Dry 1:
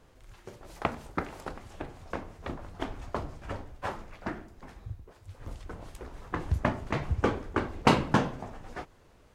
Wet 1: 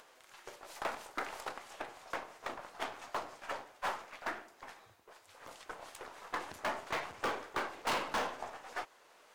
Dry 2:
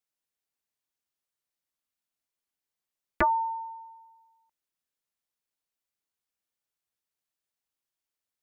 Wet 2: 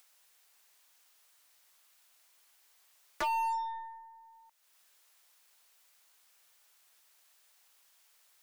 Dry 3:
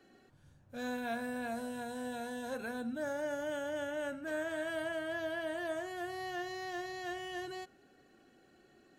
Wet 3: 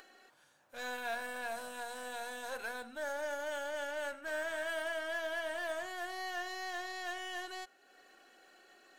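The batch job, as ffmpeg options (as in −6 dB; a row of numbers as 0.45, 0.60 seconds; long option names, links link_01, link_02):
-af "asoftclip=type=tanh:threshold=-21.5dB,acompressor=mode=upward:threshold=-52dB:ratio=2.5,highpass=690,volume=32.5dB,asoftclip=hard,volume=-32.5dB,aeval=exprs='0.0251*(cos(1*acos(clip(val(0)/0.0251,-1,1)))-cos(1*PI/2))+0.00141*(cos(8*acos(clip(val(0)/0.0251,-1,1)))-cos(8*PI/2))':channel_layout=same,volume=3dB"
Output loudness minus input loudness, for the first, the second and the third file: −7.5, −6.5, −0.5 LU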